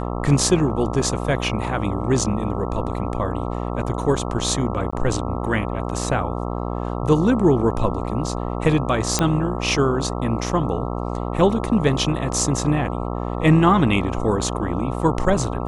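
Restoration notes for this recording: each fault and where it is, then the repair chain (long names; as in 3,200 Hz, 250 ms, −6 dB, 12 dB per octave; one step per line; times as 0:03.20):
mains buzz 60 Hz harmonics 22 −26 dBFS
0:04.91–0:04.92: drop-out 15 ms
0:09.19: click −4 dBFS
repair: click removal
hum removal 60 Hz, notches 22
repair the gap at 0:04.91, 15 ms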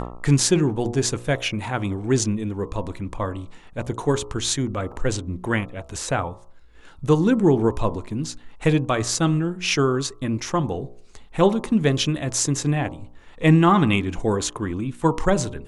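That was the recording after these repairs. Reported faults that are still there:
none of them is left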